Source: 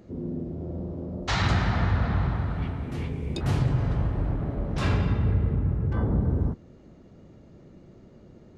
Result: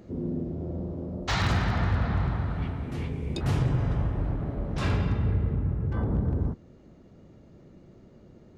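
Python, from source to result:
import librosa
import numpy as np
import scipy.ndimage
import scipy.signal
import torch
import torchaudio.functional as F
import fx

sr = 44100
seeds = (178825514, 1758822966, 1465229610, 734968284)

p1 = fx.notch(x, sr, hz=4300.0, q=9.3, at=(3.54, 4.21))
p2 = fx.rider(p1, sr, range_db=5, speed_s=2.0)
p3 = p1 + (p2 * 10.0 ** (2.5 / 20.0))
p4 = 10.0 ** (-8.5 / 20.0) * (np.abs((p3 / 10.0 ** (-8.5 / 20.0) + 3.0) % 4.0 - 2.0) - 1.0)
y = p4 * 10.0 ** (-9.0 / 20.0)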